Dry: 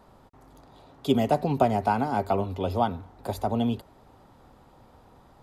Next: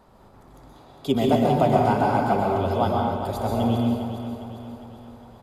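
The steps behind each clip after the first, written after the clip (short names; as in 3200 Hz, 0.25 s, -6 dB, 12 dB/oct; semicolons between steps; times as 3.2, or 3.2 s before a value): on a send: feedback echo 0.405 s, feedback 51%, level -9.5 dB; on the sum: plate-style reverb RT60 1.1 s, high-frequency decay 0.75×, pre-delay 0.11 s, DRR -1.5 dB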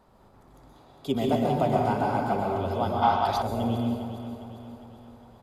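spectral gain 3.03–3.42, 650–6400 Hz +12 dB; gain -5 dB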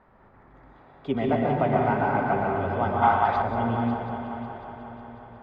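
synth low-pass 1900 Hz, resonance Q 2.7; multi-head echo 0.182 s, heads first and third, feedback 61%, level -13 dB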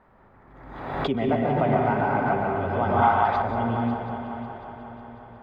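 backwards sustainer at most 46 dB/s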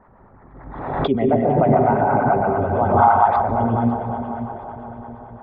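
formant sharpening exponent 1.5; harmonic tremolo 8.8 Hz, depth 50%, crossover 660 Hz; gain +8.5 dB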